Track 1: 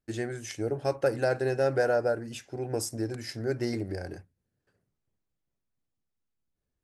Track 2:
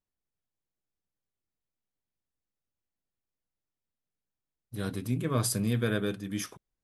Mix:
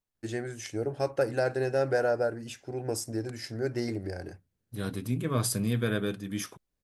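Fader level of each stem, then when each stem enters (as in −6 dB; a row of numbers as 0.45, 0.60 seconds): −1.0, 0.0 decibels; 0.15, 0.00 seconds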